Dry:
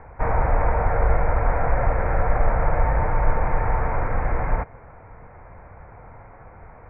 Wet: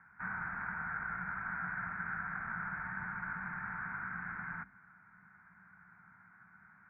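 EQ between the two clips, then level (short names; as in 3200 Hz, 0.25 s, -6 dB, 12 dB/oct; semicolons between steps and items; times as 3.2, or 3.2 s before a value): double band-pass 530 Hz, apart 3 oct; tilt +2 dB/oct; notches 50/100/150/200/250/300/350/400/450 Hz; -1.5 dB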